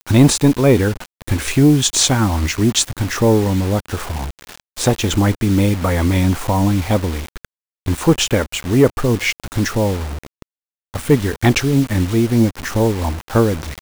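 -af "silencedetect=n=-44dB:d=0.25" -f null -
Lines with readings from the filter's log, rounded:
silence_start: 7.45
silence_end: 7.86 | silence_duration: 0.41
silence_start: 10.42
silence_end: 10.94 | silence_duration: 0.52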